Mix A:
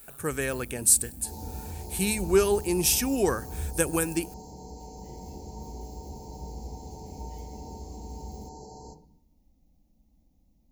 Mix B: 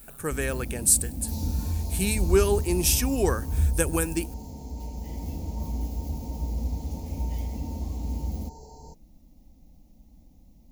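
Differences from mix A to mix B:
first sound +11.0 dB; reverb: off

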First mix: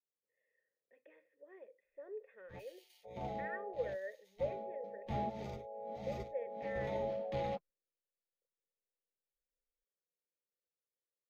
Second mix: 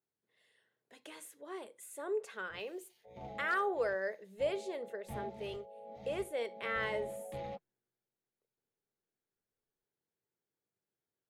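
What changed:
speech: remove cascade formant filter e; background -5.0 dB

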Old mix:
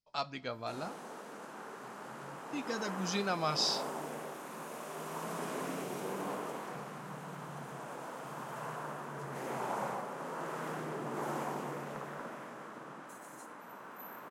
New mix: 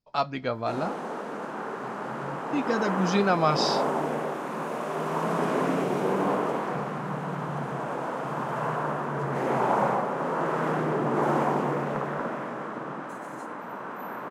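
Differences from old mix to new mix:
speech: send -11.0 dB; master: remove pre-emphasis filter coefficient 0.8

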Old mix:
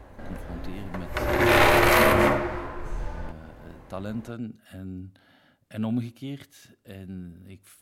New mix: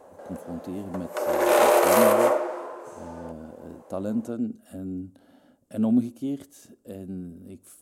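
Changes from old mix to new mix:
background: add high-pass 460 Hz 24 dB/octave; master: add ten-band graphic EQ 125 Hz -7 dB, 250 Hz +8 dB, 500 Hz +6 dB, 2 kHz -10 dB, 4 kHz -6 dB, 8 kHz +7 dB

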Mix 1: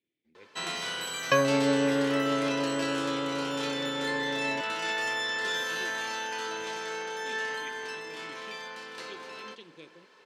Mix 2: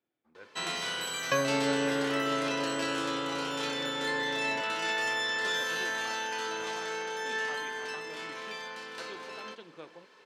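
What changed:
speech: remove FFT filter 410 Hz 0 dB, 1.2 kHz -28 dB, 2 kHz +4 dB; second sound -5.0 dB

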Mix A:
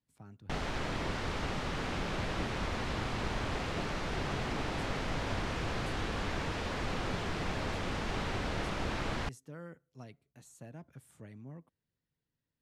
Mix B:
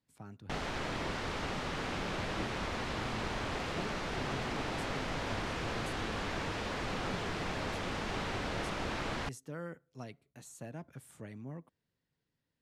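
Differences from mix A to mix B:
speech +5.5 dB; master: add bass shelf 140 Hz -6 dB

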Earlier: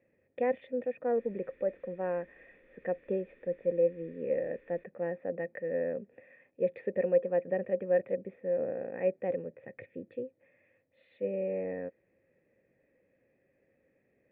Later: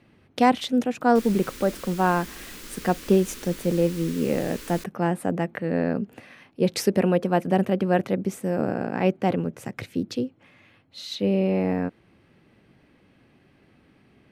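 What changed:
background +5.0 dB; master: remove cascade formant filter e

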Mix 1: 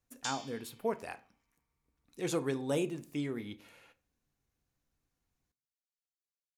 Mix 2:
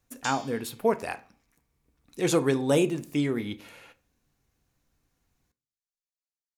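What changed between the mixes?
speech +9.5 dB; background: send +10.5 dB

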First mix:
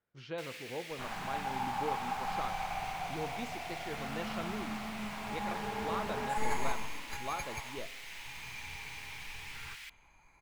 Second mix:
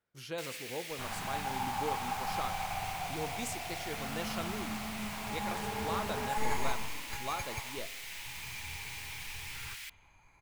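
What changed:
speech: remove distance through air 200 m; first sound: add treble shelf 5.4 kHz +10.5 dB; second sound: add peaking EQ 96 Hz +9.5 dB 0.59 oct

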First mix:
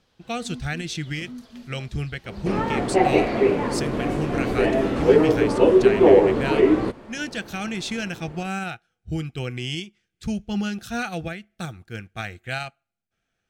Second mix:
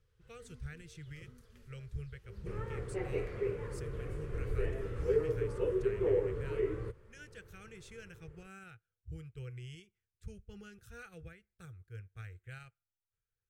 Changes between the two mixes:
speech -8.0 dB; second sound -5.5 dB; master: add FFT filter 110 Hz 0 dB, 260 Hz -27 dB, 450 Hz -6 dB, 700 Hz -27 dB, 1.3 kHz -12 dB, 2 kHz -13 dB, 4.1 kHz -21 dB, 9 kHz -10 dB

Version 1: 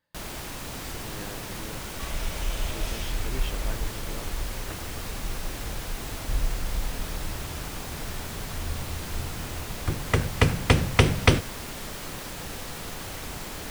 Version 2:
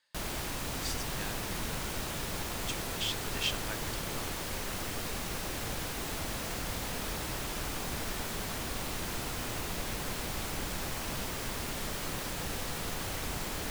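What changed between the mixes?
speech: add frequency weighting ITU-R 468; second sound: muted

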